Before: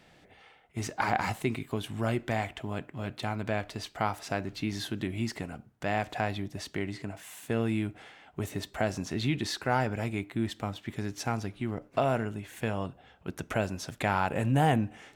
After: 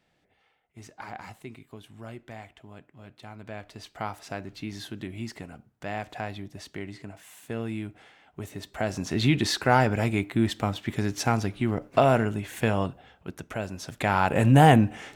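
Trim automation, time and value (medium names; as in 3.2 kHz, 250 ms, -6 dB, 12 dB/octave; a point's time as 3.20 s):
3.19 s -12 dB
3.98 s -3.5 dB
8.57 s -3.5 dB
9.26 s +7 dB
12.82 s +7 dB
13.51 s -4 dB
14.48 s +8.5 dB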